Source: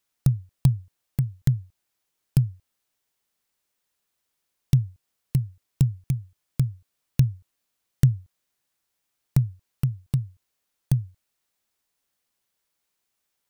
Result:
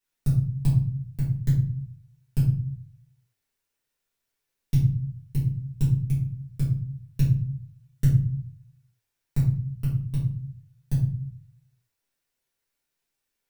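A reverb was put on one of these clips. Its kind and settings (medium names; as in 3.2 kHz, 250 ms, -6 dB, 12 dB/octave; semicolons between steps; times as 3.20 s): simulated room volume 50 m³, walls mixed, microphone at 2 m; trim -12.5 dB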